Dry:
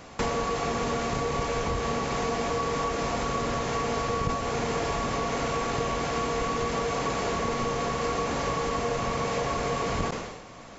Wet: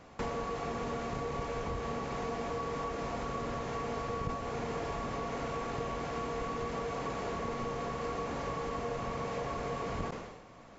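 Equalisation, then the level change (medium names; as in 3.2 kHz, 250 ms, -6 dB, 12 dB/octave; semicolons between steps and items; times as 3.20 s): treble shelf 3.1 kHz -8.5 dB; -7.5 dB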